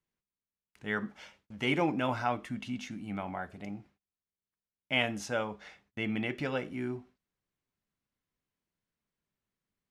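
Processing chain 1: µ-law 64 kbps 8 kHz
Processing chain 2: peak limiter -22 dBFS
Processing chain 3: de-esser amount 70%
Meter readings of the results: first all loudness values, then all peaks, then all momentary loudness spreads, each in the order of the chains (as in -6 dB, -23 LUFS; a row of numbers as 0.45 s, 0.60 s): -34.5 LUFS, -36.5 LUFS, -34.5 LUFS; -13.0 dBFS, -22.0 dBFS, -13.5 dBFS; 15 LU, 12 LU, 14 LU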